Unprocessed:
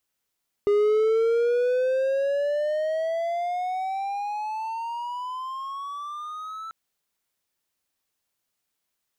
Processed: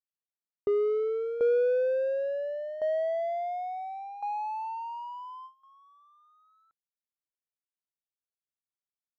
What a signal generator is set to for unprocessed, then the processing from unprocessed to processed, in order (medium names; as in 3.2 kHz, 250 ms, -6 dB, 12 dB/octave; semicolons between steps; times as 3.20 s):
gliding synth tone triangle, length 6.04 s, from 407 Hz, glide +20.5 st, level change -16.5 dB, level -15 dB
low-pass 1.2 kHz 6 dB/octave; gate with hold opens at -28 dBFS; tremolo saw down 0.71 Hz, depth 75%